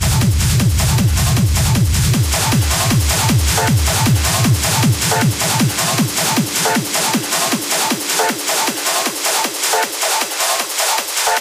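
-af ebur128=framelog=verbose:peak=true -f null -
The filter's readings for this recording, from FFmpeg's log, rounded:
Integrated loudness:
  I:         -14.6 LUFS
  Threshold: -24.6 LUFS
Loudness range:
  LRA:         1.7 LU
  Threshold: -34.5 LUFS
  LRA low:   -15.5 LUFS
  LRA high:  -13.8 LUFS
True peak:
  Peak:       -5.8 dBFS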